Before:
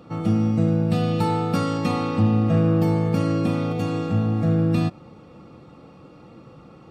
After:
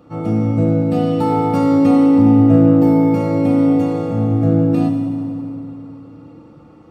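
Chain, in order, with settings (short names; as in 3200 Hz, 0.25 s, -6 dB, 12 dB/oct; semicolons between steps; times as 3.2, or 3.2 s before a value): bell 3900 Hz -4.5 dB 1.8 oct; FDN reverb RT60 3 s, low-frequency decay 1.25×, high-frequency decay 0.65×, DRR 1 dB; dynamic EQ 550 Hz, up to +7 dB, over -36 dBFS, Q 0.97; gain -1.5 dB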